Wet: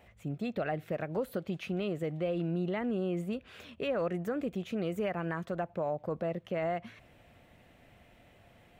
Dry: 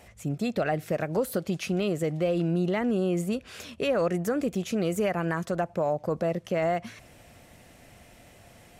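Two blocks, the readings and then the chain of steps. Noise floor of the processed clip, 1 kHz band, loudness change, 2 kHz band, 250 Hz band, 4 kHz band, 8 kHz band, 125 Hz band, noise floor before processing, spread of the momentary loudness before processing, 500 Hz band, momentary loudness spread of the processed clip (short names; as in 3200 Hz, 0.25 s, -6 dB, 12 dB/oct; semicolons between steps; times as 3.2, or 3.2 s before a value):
-61 dBFS, -6.5 dB, -6.5 dB, -6.5 dB, -6.5 dB, -8.0 dB, under -15 dB, -6.5 dB, -54 dBFS, 5 LU, -6.5 dB, 5 LU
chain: band shelf 7700 Hz -11.5 dB; gain -6.5 dB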